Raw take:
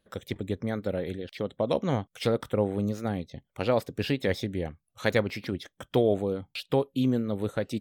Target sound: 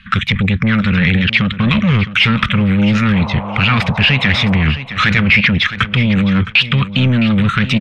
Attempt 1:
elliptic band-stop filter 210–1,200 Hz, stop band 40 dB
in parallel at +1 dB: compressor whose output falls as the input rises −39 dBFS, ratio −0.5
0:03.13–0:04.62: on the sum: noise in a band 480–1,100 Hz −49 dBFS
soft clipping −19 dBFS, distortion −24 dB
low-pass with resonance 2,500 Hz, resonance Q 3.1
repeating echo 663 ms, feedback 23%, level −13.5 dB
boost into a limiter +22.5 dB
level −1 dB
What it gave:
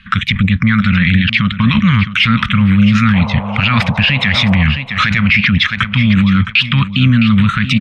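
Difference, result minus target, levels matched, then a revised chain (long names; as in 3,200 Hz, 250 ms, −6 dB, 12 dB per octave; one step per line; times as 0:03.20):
soft clipping: distortion −12 dB
elliptic band-stop filter 210–1,200 Hz, stop band 40 dB
in parallel at +1 dB: compressor whose output falls as the input rises −39 dBFS, ratio −0.5
0:03.13–0:04.62: on the sum: noise in a band 480–1,100 Hz −49 dBFS
soft clipping −30 dBFS, distortion −12 dB
low-pass with resonance 2,500 Hz, resonance Q 3.1
repeating echo 663 ms, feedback 23%, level −13.5 dB
boost into a limiter +22.5 dB
level −1 dB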